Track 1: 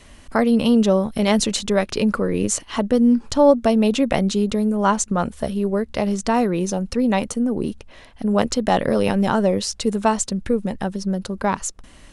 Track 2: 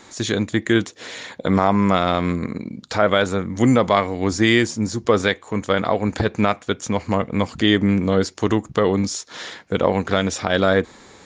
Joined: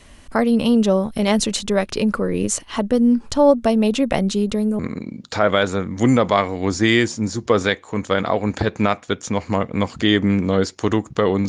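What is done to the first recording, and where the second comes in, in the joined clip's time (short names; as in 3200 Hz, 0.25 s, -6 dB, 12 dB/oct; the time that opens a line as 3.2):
track 1
4.79 switch to track 2 from 2.38 s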